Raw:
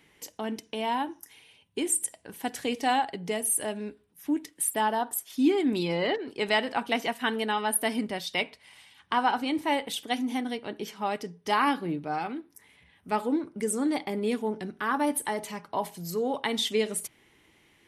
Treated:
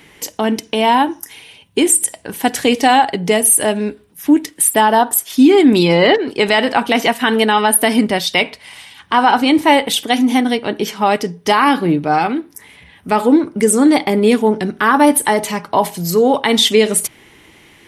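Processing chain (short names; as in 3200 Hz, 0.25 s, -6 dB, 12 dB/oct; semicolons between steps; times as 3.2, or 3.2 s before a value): maximiser +17.5 dB; gain -1 dB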